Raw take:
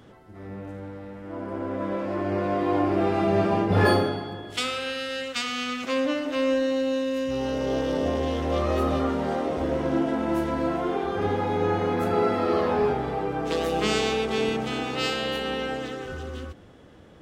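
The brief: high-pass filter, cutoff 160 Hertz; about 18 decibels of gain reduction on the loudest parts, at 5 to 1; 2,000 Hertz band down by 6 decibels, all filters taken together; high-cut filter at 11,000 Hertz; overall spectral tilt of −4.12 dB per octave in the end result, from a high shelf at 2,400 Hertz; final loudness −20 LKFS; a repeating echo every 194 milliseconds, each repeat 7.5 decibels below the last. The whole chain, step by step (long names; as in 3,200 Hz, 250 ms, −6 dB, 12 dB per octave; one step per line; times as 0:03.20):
high-pass filter 160 Hz
low-pass filter 11,000 Hz
parametric band 2,000 Hz −6 dB
high-shelf EQ 2,400 Hz −3.5 dB
downward compressor 5 to 1, threshold −39 dBFS
repeating echo 194 ms, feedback 42%, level −7.5 dB
level +20.5 dB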